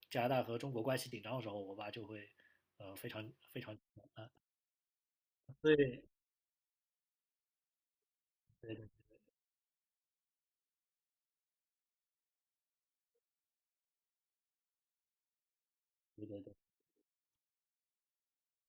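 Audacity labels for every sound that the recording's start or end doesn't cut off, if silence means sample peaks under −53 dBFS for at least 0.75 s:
5.490000	6.000000	sound
8.630000	8.870000	sound
16.180000	16.520000	sound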